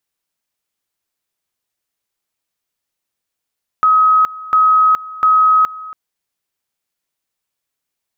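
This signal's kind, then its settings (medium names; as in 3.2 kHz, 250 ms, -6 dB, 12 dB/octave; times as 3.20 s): two-level tone 1.27 kHz -7.5 dBFS, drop 19.5 dB, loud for 0.42 s, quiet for 0.28 s, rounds 3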